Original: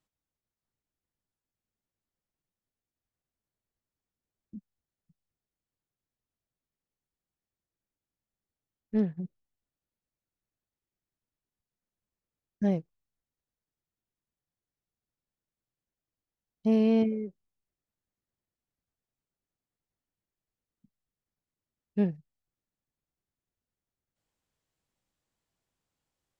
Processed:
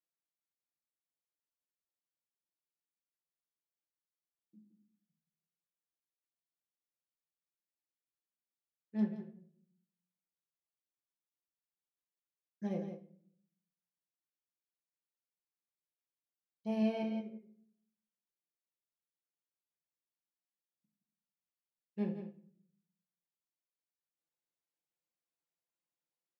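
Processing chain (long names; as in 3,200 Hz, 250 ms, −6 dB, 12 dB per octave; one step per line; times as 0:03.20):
high-pass filter 250 Hz 12 dB per octave
comb filter 5.8 ms, depth 59%
single-tap delay 170 ms −7 dB
rectangular room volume 110 cubic metres, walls mixed, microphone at 0.62 metres
expander for the loud parts 1.5 to 1, over −41 dBFS
level −7 dB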